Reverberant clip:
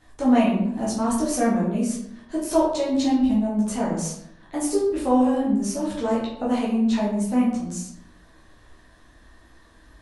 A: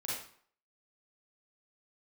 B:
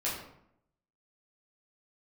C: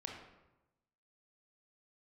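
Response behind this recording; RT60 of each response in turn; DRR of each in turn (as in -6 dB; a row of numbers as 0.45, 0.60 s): B; 0.55, 0.75, 1.0 s; -7.0, -7.5, 0.0 dB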